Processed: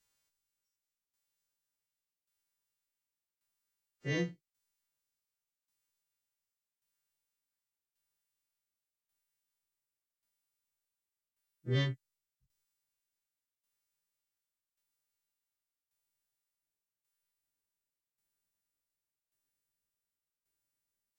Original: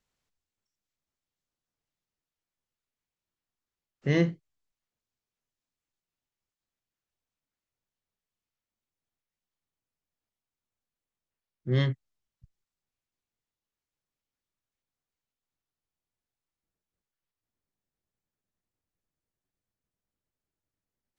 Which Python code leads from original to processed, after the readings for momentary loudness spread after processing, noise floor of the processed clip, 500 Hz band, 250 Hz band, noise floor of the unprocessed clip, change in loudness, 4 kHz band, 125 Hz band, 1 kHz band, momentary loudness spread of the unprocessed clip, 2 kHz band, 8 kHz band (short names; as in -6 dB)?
14 LU, under -85 dBFS, -8.0 dB, -9.5 dB, under -85 dBFS, -7.5 dB, -2.0 dB, -7.5 dB, -6.5 dB, 14 LU, -4.0 dB, n/a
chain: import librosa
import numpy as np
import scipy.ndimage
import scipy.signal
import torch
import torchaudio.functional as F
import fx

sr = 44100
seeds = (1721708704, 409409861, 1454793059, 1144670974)

y = fx.freq_snap(x, sr, grid_st=2)
y = fx.tremolo_shape(y, sr, shape='saw_down', hz=0.88, depth_pct=80)
y = F.gain(torch.from_numpy(y), -2.5).numpy()